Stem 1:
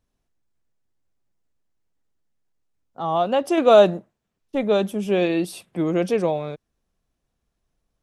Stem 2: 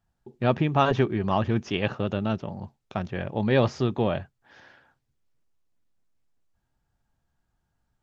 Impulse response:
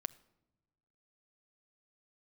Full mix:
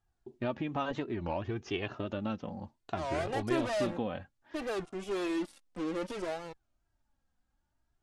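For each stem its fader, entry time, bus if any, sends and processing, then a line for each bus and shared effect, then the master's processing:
-15.0 dB, 0.00 s, no send, fuzz box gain 25 dB, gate -34 dBFS
-0.5 dB, 0.00 s, no send, compression 10:1, threshold -25 dBFS, peak gain reduction 10.5 dB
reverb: none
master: steep low-pass 11 kHz 36 dB/octave; flange 0.61 Hz, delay 2.4 ms, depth 1.6 ms, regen +16%; warped record 33 1/3 rpm, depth 250 cents

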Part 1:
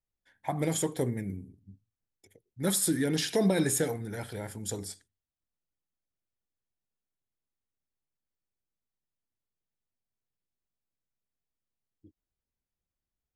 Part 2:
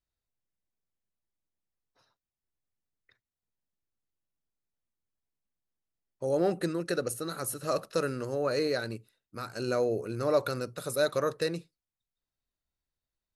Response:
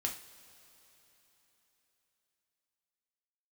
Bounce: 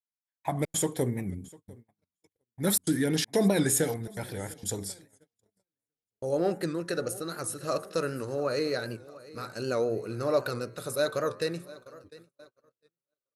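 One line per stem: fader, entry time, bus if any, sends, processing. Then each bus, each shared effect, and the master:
+1.5 dB, 0.00 s, no send, echo send -23.5 dB, treble shelf 10 kHz +5 dB; trance gate "xx.xxxx.xxxxxx" 162 bpm -60 dB
0.0 dB, 0.00 s, no send, echo send -19.5 dB, de-hum 89.35 Hz, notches 26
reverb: none
echo: feedback delay 699 ms, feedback 52%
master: gate -50 dBFS, range -37 dB; warped record 78 rpm, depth 100 cents

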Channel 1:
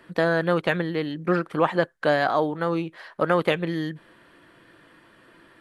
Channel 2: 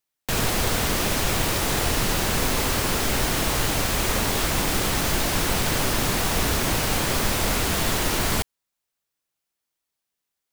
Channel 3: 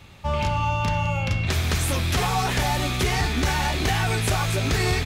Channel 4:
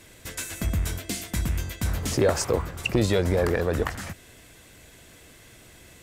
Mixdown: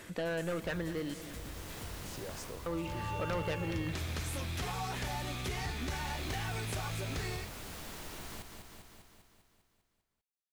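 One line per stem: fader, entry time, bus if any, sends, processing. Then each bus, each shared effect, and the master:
0.0 dB, 0.00 s, muted 1.14–2.66 s, no send, echo send -15.5 dB, saturation -21 dBFS, distortion -8 dB
-18.5 dB, 0.00 s, no send, echo send -7.5 dB, auto duck -10 dB, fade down 0.25 s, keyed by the first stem
-16.5 dB, 2.45 s, no send, no echo send, level rider gain up to 11.5 dB
-19.0 dB, 0.00 s, no send, no echo send, level flattener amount 50%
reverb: none
echo: feedback delay 199 ms, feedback 59%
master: compression 1.5:1, threshold -49 dBFS, peak gain reduction 10 dB

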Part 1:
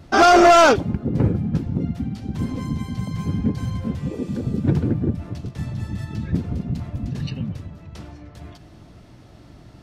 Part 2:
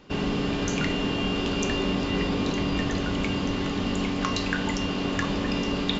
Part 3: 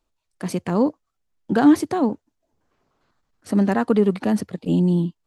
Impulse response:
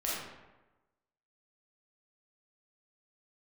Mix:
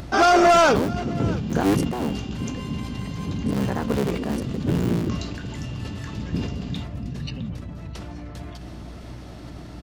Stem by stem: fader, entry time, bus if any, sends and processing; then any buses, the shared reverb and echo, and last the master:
-3.5 dB, 0.00 s, no send, echo send -21.5 dB, bass shelf 150 Hz -4.5 dB
-16.5 dB, 0.85 s, no send, echo send -13 dB, treble shelf 4.5 kHz +9.5 dB
-6.0 dB, 0.00 s, no send, no echo send, cycle switcher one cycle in 3, muted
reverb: none
echo: delay 661 ms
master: upward compressor, threshold -29 dBFS; hum 60 Hz, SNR 16 dB; decay stretcher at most 46 dB/s

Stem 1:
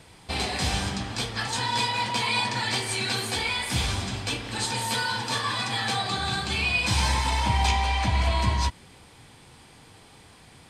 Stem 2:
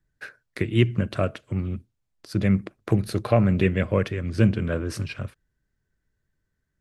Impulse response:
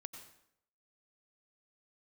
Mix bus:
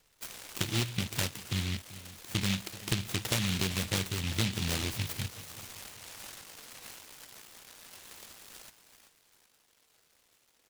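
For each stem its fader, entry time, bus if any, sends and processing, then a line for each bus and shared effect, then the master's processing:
-12.5 dB, 0.00 s, no send, echo send -10 dB, FFT band-pass 420–1100 Hz; tilt EQ +4 dB/octave; compressor with a negative ratio -37 dBFS, ratio -1
-4.0 dB, 0.00 s, no send, echo send -17 dB, compression 6:1, threshold -23 dBFS, peak gain reduction 10.5 dB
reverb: none
echo: feedback delay 386 ms, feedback 41%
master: delay time shaken by noise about 2.9 kHz, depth 0.48 ms

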